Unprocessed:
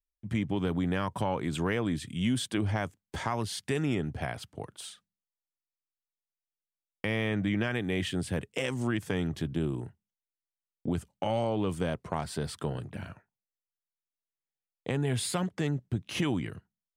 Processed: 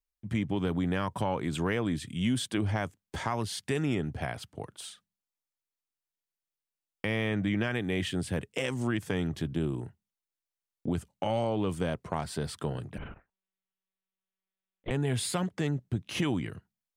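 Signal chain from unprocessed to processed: 12.98–14.91 monotone LPC vocoder at 8 kHz 190 Hz

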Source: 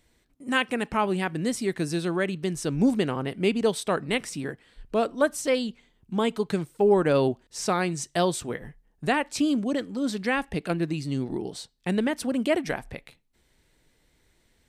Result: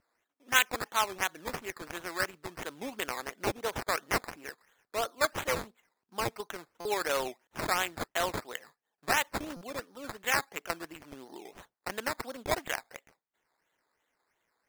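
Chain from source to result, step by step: Wiener smoothing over 15 samples; Bessel high-pass 1300 Hz, order 2; vibrato 1.2 Hz 32 cents; decimation with a swept rate 12×, swing 60% 2.9 Hz; stuck buffer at 6.8/9.56, samples 256, times 8; gain +3 dB

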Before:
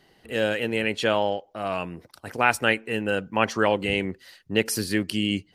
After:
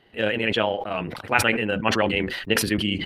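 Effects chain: granular stretch 0.55×, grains 68 ms; resonant high shelf 4300 Hz -10.5 dB, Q 1.5; sustainer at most 50 dB/s; gain +1 dB

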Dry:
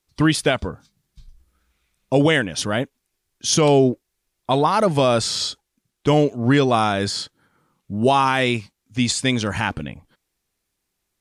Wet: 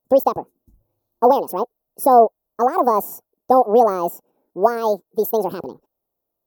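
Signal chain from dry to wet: dynamic EQ 390 Hz, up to +6 dB, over -31 dBFS, Q 1.3; speed mistake 45 rpm record played at 78 rpm; EQ curve 110 Hz 0 dB, 490 Hz +12 dB, 770 Hz +10 dB, 1100 Hz +6 dB, 2100 Hz -20 dB, 3100 Hz -12 dB, 5000 Hz -8 dB, 8600 Hz -9 dB, 13000 Hz +11 dB; gain -10 dB

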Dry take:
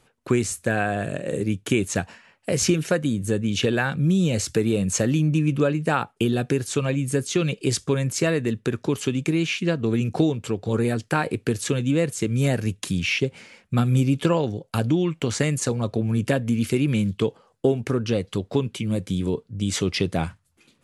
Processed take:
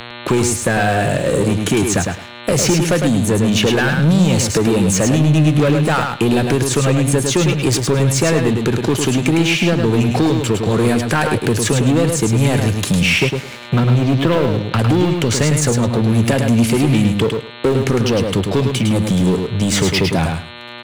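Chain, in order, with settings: 13.76–14.79 LPF 3300 Hz 12 dB/oct; in parallel at -1 dB: limiter -14 dBFS, peak gain reduction 7.5 dB; on the sum: sample leveller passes 3; buzz 120 Hz, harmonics 36, -35 dBFS -1 dB/oct; on a send: feedback echo 0.105 s, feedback 15%, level -5.5 dB; on the sum: three-band squash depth 40%; gain -5.5 dB

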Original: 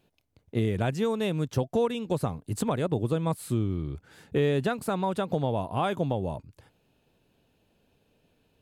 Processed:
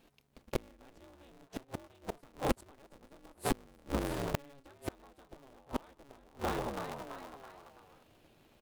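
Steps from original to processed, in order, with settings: frequency-shifting echo 0.331 s, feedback 48%, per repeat +100 Hz, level -10 dB; flipped gate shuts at -21 dBFS, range -34 dB; polarity switched at an audio rate 140 Hz; gain +3 dB

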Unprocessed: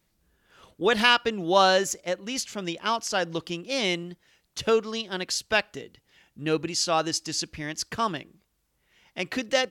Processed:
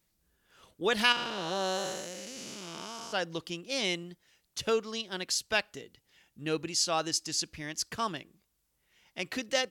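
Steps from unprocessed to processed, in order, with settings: 1.12–3.13 time blur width 0.439 s; high shelf 4100 Hz +7 dB; gain -6.5 dB

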